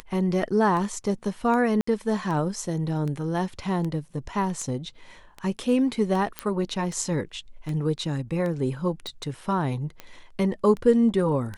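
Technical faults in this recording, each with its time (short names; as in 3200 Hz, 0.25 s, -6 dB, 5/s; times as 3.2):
tick 78 rpm -21 dBFS
1.81–1.87 gap 64 ms
6.39 pop -12 dBFS
9.07 pop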